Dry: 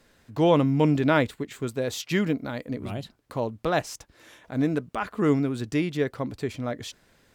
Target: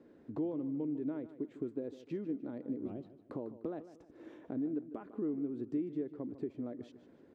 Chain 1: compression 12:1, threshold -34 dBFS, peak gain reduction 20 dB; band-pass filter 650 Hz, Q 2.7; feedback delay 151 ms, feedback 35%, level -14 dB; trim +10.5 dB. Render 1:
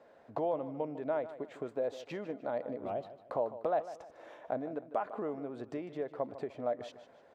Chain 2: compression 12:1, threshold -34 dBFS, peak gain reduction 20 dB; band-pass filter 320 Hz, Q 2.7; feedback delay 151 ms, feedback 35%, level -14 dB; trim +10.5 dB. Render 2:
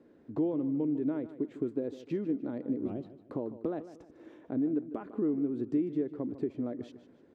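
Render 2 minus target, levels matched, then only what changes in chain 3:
compression: peak gain reduction -6 dB
change: compression 12:1, threshold -40.5 dBFS, peak gain reduction 25.5 dB

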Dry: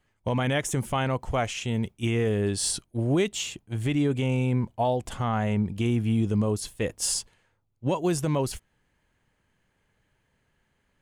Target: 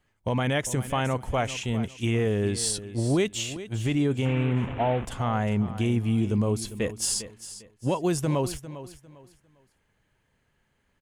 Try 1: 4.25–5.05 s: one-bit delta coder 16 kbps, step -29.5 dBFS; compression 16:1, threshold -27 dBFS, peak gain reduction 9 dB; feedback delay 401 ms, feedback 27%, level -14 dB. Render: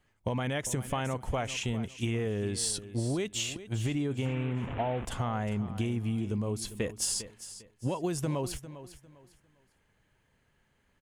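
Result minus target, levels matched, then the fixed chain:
compression: peak gain reduction +9 dB
4.25–5.05 s: one-bit delta coder 16 kbps, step -29.5 dBFS; feedback delay 401 ms, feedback 27%, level -14 dB

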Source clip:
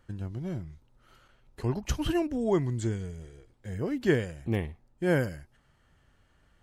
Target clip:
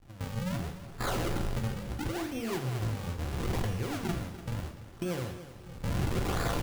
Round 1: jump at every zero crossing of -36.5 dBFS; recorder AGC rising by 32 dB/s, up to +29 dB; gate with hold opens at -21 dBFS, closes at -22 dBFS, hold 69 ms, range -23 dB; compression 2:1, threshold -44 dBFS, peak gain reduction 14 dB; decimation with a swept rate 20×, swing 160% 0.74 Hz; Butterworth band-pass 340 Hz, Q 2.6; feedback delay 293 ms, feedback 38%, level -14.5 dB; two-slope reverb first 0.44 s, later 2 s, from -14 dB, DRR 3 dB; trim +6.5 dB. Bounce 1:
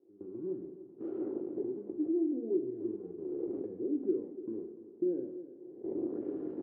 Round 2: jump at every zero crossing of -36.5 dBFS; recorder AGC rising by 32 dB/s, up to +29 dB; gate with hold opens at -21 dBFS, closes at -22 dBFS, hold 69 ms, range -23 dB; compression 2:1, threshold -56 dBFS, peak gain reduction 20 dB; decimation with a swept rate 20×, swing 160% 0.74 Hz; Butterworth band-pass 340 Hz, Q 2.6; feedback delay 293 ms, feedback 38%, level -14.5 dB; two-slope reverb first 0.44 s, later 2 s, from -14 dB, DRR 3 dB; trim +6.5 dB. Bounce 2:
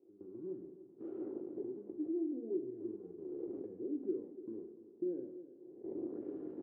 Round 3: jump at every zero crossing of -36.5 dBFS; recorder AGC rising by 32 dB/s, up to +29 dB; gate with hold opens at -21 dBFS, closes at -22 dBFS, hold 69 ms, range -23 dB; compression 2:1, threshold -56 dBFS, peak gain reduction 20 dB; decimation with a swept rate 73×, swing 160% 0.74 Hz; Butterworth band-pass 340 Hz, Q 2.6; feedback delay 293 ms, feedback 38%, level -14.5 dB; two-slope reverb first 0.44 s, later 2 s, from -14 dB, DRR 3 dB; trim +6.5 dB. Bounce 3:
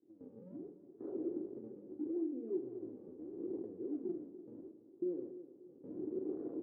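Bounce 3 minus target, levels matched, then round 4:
250 Hz band +4.0 dB
jump at every zero crossing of -36.5 dBFS; recorder AGC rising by 32 dB/s, up to +29 dB; gate with hold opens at -21 dBFS, closes at -22 dBFS, hold 69 ms, range -23 dB; compression 2:1, threshold -56 dBFS, peak gain reduction 20 dB; decimation with a swept rate 73×, swing 160% 0.74 Hz; feedback delay 293 ms, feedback 38%, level -14.5 dB; two-slope reverb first 0.44 s, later 2 s, from -14 dB, DRR 3 dB; trim +6.5 dB

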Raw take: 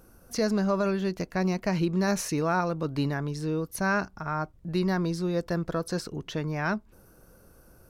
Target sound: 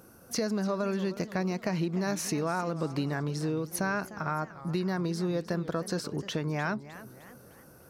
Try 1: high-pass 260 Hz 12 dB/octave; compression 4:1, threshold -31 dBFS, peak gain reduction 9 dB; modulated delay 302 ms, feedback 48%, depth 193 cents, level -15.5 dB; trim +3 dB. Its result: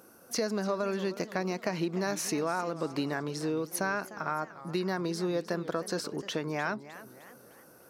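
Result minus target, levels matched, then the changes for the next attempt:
125 Hz band -5.0 dB
change: high-pass 110 Hz 12 dB/octave

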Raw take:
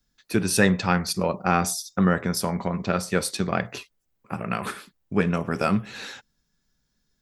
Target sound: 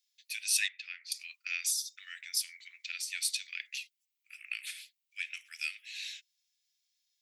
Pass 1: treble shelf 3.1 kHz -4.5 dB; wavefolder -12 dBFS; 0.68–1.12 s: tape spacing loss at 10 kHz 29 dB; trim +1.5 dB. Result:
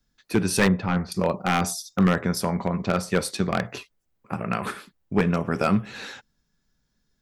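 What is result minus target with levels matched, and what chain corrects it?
2 kHz band -3.0 dB
steep high-pass 2.2 kHz 48 dB/octave; treble shelf 3.1 kHz -4.5 dB; wavefolder -12 dBFS; 0.68–1.12 s: tape spacing loss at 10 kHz 29 dB; trim +1.5 dB

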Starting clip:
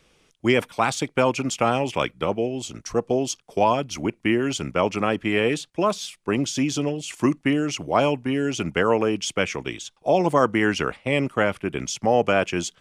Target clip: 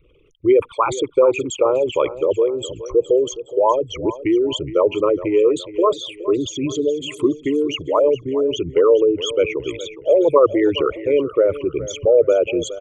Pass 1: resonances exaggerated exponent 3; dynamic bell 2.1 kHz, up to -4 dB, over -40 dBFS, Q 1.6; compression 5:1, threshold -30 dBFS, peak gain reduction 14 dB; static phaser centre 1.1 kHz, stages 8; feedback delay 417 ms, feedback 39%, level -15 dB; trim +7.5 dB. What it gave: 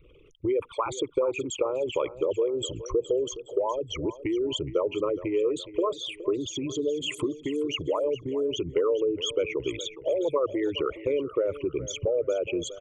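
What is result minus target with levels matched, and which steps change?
compression: peak gain reduction +14 dB
remove: compression 5:1, threshold -30 dBFS, peak gain reduction 14 dB

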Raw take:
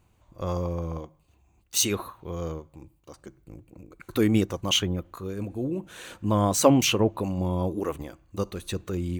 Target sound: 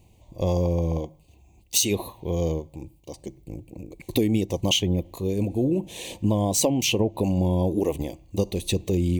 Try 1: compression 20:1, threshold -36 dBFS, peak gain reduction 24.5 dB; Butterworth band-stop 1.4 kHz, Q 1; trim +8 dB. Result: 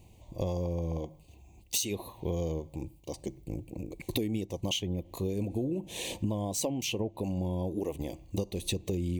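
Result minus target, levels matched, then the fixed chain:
compression: peak gain reduction +10 dB
compression 20:1, threshold -25.5 dBFS, peak gain reduction 14.5 dB; Butterworth band-stop 1.4 kHz, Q 1; trim +8 dB

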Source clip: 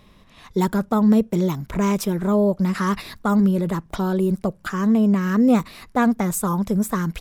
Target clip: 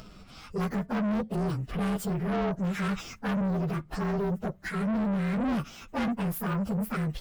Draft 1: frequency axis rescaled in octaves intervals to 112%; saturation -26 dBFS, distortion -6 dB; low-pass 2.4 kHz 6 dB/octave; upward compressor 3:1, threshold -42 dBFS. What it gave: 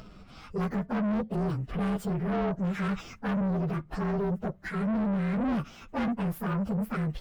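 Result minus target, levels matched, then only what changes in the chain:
8 kHz band -7.5 dB
change: low-pass 8.2 kHz 6 dB/octave

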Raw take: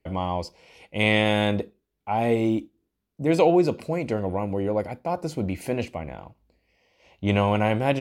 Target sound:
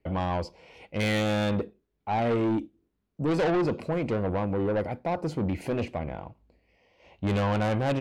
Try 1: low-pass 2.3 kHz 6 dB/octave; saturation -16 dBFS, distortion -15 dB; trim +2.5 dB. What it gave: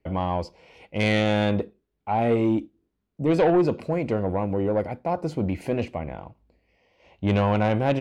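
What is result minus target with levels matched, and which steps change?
saturation: distortion -8 dB
change: saturation -24.5 dBFS, distortion -7 dB

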